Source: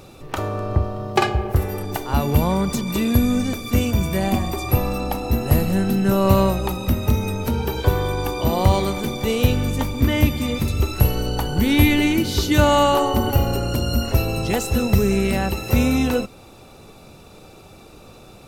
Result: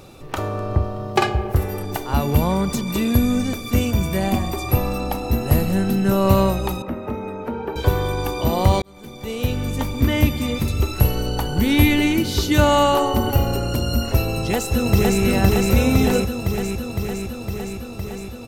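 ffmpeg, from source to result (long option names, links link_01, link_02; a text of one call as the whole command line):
ffmpeg -i in.wav -filter_complex "[0:a]asettb=1/sr,asplit=3[link_01][link_02][link_03];[link_01]atrim=end=6.824[link_04];[link_02]atrim=start=6.82:end=7.76,asetpts=PTS-STARTPTS,afade=type=in:duration=0.004:curve=qsin,afade=type=out:start_time=0.936:duration=0.004:curve=qsin,acrossover=split=220 2100:gain=0.141 1 0.0631[link_05][link_06][link_07];[link_05][link_06][link_07]amix=inputs=3:normalize=0[link_08];[link_03]atrim=start=7.756[link_09];[link_04][link_08]acrossfade=duration=0.004:curve1=hsin:curve2=qsin[link_10];[link_10][link_09]acrossfade=duration=0.004:curve1=qsin:curve2=hsin,asplit=2[link_11][link_12];[link_12]afade=type=in:start_time=14.34:duration=0.01,afade=type=out:start_time=15.22:duration=0.01,aecho=0:1:510|1020|1530|2040|2550|3060|3570|4080|4590|5100|5610|6120:0.891251|0.668438|0.501329|0.375996|0.281997|0.211498|0.158624|0.118968|0.0892257|0.0669193|0.0501895|0.0376421[link_13];[link_11][link_13]amix=inputs=2:normalize=0,asplit=2[link_14][link_15];[link_14]atrim=end=8.82,asetpts=PTS-STARTPTS,afade=type=out:start_time=8.816:duration=0.004:curve=hsin[link_16];[link_15]atrim=start=8.82,asetpts=PTS-STARTPTS,afade=type=in:duration=1.12[link_17];[link_16][link_17]concat=n=2:v=0:a=1" out.wav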